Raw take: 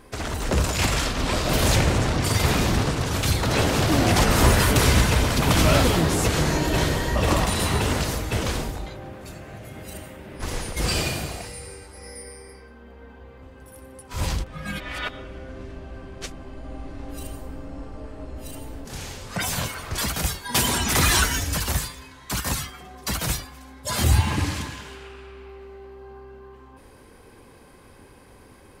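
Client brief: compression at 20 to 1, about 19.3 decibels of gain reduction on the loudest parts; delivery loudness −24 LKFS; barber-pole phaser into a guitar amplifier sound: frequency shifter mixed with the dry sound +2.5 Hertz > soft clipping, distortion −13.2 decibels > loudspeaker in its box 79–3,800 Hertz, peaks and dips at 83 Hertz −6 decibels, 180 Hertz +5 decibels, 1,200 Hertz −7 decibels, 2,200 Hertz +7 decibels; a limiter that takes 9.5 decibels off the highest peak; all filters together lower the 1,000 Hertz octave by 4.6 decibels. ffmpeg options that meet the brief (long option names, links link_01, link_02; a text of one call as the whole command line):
ffmpeg -i in.wav -filter_complex "[0:a]equalizer=frequency=1000:width_type=o:gain=-3.5,acompressor=threshold=-32dB:ratio=20,alimiter=level_in=4dB:limit=-24dB:level=0:latency=1,volume=-4dB,asplit=2[link_01][link_02];[link_02]afreqshift=2.5[link_03];[link_01][link_03]amix=inputs=2:normalize=1,asoftclip=threshold=-38.5dB,highpass=79,equalizer=frequency=83:width_type=q:width=4:gain=-6,equalizer=frequency=180:width_type=q:width=4:gain=5,equalizer=frequency=1200:width_type=q:width=4:gain=-7,equalizer=frequency=2200:width_type=q:width=4:gain=7,lowpass=frequency=3800:width=0.5412,lowpass=frequency=3800:width=1.3066,volume=22dB" out.wav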